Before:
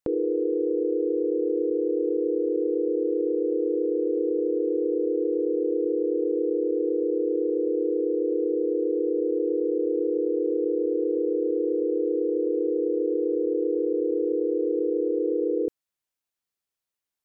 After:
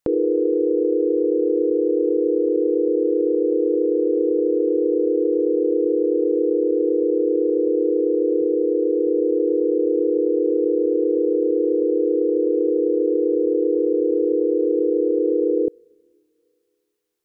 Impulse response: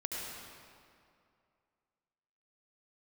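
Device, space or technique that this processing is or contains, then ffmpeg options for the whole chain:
keyed gated reverb: -filter_complex "[0:a]asettb=1/sr,asplit=3[s0][s1][s2];[s0]atrim=end=8.414[s3];[s1]atrim=start=8.41:end=9.07,asetpts=PTS-STARTPTS,afade=t=in:d=0.004:c=qsin,afade=t=out:st=0.656:d=0.004:c=qsin,equalizer=f=130:t=o:w=0.59:g=-10.5[s4];[s2]atrim=start=9.066[s5];[s3][s4]acrossfade=d=0.004:c1=hsin:c2=qsin[s6];[s6][s5]acrossfade=d=0.004:c1=qsin:c2=hsin,asplit=3[s7][s8][s9];[1:a]atrim=start_sample=2205[s10];[s8][s10]afir=irnorm=-1:irlink=0[s11];[s9]apad=whole_len=760337[s12];[s11][s12]sidechaingate=range=0.0501:threshold=0.1:ratio=16:detection=peak,volume=0.631[s13];[s7][s13]amix=inputs=2:normalize=0,volume=1.88"

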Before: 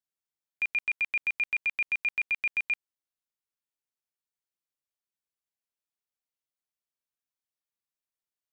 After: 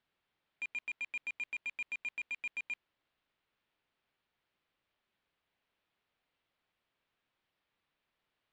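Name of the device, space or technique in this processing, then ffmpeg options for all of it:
synthesiser wavefolder: -af "aeval=exprs='0.0106*(abs(mod(val(0)/0.0106+3,4)-2)-1)':c=same,lowpass=f=3500:w=0.5412,lowpass=f=3500:w=1.3066,volume=5.96"

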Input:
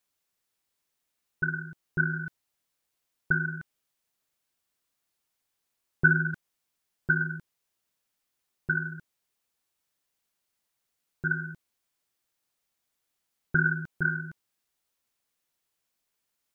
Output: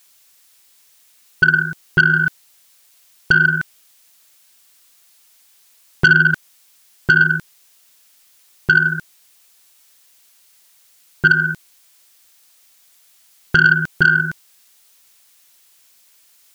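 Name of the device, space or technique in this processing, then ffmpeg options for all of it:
mastering chain: -af "equalizer=f=640:t=o:w=2.2:g=2.5,acompressor=threshold=0.0398:ratio=2,asoftclip=type=tanh:threshold=0.119,tiltshelf=f=1500:g=-7.5,alimiter=level_in=11.9:limit=0.891:release=50:level=0:latency=1,volume=0.891"

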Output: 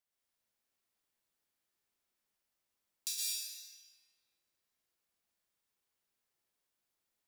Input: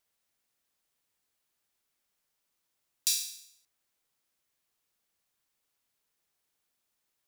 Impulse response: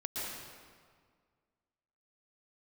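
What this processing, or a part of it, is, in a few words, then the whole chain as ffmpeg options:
stairwell: -filter_complex "[1:a]atrim=start_sample=2205[s0];[0:a][s0]afir=irnorm=-1:irlink=0,volume=0.422"

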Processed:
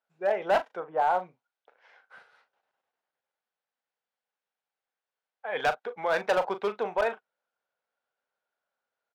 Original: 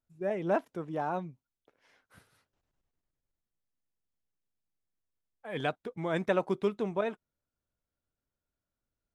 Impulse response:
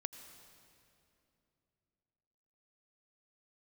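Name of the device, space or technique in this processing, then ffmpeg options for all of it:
megaphone: -filter_complex "[0:a]asettb=1/sr,asplit=3[s0][s1][s2];[s0]atrim=end=0.804[s3];[s1]atrim=start=0.8:end=1.22,asetpts=PTS-STARTPTS,afade=t=in:d=0.004:c=qsin,afade=t=out:st=0.416:d=0.004:c=qsin,lowpass=1500[s4];[s2]atrim=start=1.216[s5];[s3][s4]acrossfade=d=0.004:c1=hsin:c2=qsin[s6];[s6][s5]acrossfade=d=0.004:c1=qsin:c2=hsin,highpass=530,lowpass=3400,equalizer=f=1500:t=o:w=0.25:g=6,asoftclip=type=hard:threshold=0.0422,equalizer=f=315:t=o:w=0.33:g=-9,equalizer=f=500:t=o:w=0.33:g=4,equalizer=f=800:t=o:w=0.33:g=7,asplit=2[s7][s8];[s8]adelay=39,volume=0.266[s9];[s7][s9]amix=inputs=2:normalize=0,volume=2.11"

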